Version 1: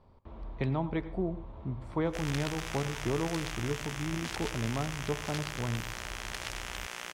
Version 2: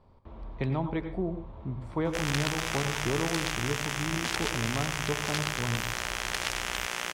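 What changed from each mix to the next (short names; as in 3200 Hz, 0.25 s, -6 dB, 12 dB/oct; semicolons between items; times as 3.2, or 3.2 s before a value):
speech: send +7.0 dB; background +7.5 dB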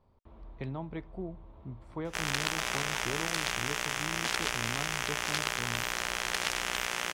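speech -6.0 dB; reverb: off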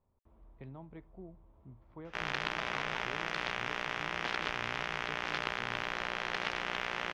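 speech -10.0 dB; master: add air absorption 260 m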